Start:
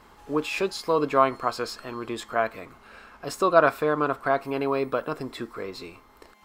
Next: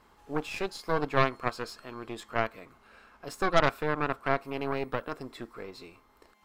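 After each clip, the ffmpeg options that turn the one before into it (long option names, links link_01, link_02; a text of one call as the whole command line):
ffmpeg -i in.wav -af "aeval=exprs='0.75*(cos(1*acos(clip(val(0)/0.75,-1,1)))-cos(1*PI/2))+0.211*(cos(6*acos(clip(val(0)/0.75,-1,1)))-cos(6*PI/2))':channel_layout=same,volume=-8dB" out.wav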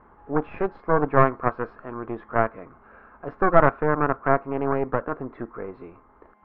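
ffmpeg -i in.wav -af "lowpass=frequency=1600:width=0.5412,lowpass=frequency=1600:width=1.3066,volume=8dB" out.wav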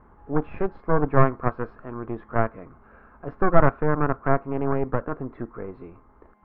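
ffmpeg -i in.wav -af "lowshelf=frequency=240:gain=9.5,volume=-3.5dB" out.wav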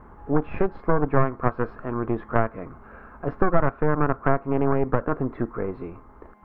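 ffmpeg -i in.wav -af "acompressor=threshold=-23dB:ratio=3,volume=6.5dB" out.wav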